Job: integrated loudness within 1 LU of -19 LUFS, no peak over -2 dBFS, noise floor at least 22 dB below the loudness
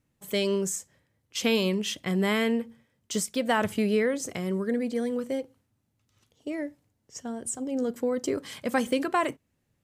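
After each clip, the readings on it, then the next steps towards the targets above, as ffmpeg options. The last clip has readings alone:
loudness -28.5 LUFS; peak -13.0 dBFS; loudness target -19.0 LUFS
-> -af "volume=9.5dB"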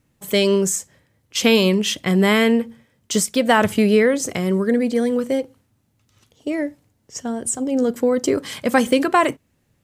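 loudness -19.0 LUFS; peak -3.5 dBFS; noise floor -66 dBFS

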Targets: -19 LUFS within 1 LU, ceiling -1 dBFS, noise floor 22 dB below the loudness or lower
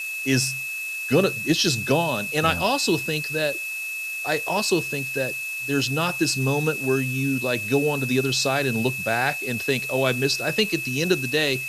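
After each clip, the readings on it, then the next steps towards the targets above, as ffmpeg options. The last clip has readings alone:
steady tone 2600 Hz; tone level -28 dBFS; noise floor -31 dBFS; noise floor target -45 dBFS; loudness -23.0 LUFS; peak -5.5 dBFS; loudness target -19.0 LUFS
-> -af "bandreject=f=2.6k:w=30"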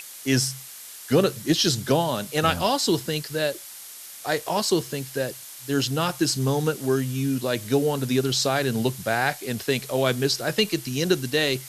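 steady tone none; noise floor -41 dBFS; noise floor target -46 dBFS
-> -af "afftdn=nr=6:nf=-41"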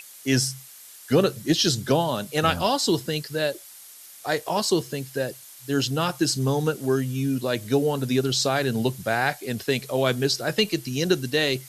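noise floor -46 dBFS; loudness -24.0 LUFS; peak -6.5 dBFS; loudness target -19.0 LUFS
-> -af "volume=5dB"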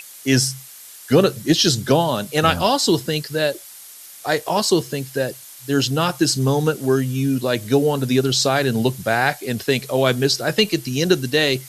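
loudness -19.0 LUFS; peak -1.5 dBFS; noise floor -41 dBFS

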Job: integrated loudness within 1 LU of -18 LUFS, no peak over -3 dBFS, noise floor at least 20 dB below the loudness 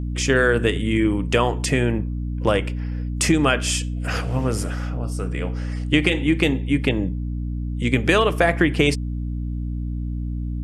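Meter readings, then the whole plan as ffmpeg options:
hum 60 Hz; harmonics up to 300 Hz; hum level -24 dBFS; loudness -22.0 LUFS; peak -3.0 dBFS; loudness target -18.0 LUFS
-> -af "bandreject=f=60:t=h:w=4,bandreject=f=120:t=h:w=4,bandreject=f=180:t=h:w=4,bandreject=f=240:t=h:w=4,bandreject=f=300:t=h:w=4"
-af "volume=4dB,alimiter=limit=-3dB:level=0:latency=1"

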